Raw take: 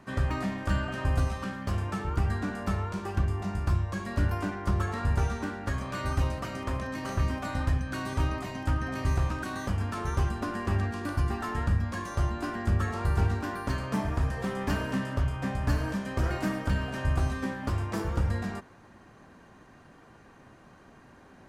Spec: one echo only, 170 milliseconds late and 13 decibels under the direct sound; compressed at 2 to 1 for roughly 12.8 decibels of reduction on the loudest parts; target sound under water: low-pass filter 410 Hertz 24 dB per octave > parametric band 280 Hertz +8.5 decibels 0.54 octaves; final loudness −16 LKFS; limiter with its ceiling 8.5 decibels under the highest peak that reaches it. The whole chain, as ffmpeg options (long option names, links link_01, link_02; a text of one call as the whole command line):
ffmpeg -i in.wav -af "acompressor=threshold=-46dB:ratio=2,alimiter=level_in=10.5dB:limit=-24dB:level=0:latency=1,volume=-10.5dB,lowpass=frequency=410:width=0.5412,lowpass=frequency=410:width=1.3066,equalizer=frequency=280:width_type=o:width=0.54:gain=8.5,aecho=1:1:170:0.224,volume=27dB" out.wav